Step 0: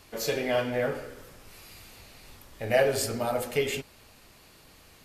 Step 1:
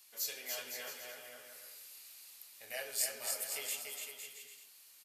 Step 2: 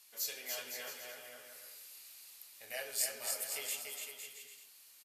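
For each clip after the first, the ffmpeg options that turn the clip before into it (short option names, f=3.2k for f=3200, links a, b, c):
-af "aderivative,aecho=1:1:290|507.5|670.6|793|884.7:0.631|0.398|0.251|0.158|0.1,volume=-2.5dB"
-af "aresample=32000,aresample=44100"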